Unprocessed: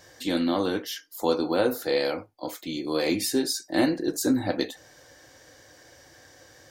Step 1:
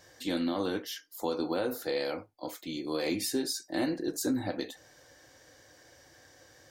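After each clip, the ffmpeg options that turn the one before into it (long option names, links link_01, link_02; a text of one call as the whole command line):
ffmpeg -i in.wav -af "alimiter=limit=-15.5dB:level=0:latency=1:release=82,volume=-5dB" out.wav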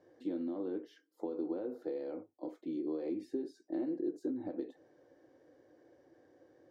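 ffmpeg -i in.wav -af "acompressor=threshold=-34dB:ratio=6,bandpass=frequency=350:width_type=q:width=2.1:csg=0,volume=3.5dB" out.wav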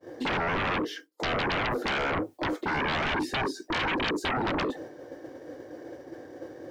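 ffmpeg -i in.wav -af "agate=range=-33dB:threshold=-59dB:ratio=3:detection=peak,aeval=exprs='0.0562*sin(PI/2*10*val(0)/0.0562)':channel_layout=same" out.wav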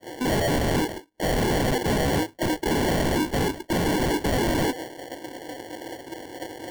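ffmpeg -i in.wav -af "acrusher=samples=35:mix=1:aa=0.000001,volume=5.5dB" out.wav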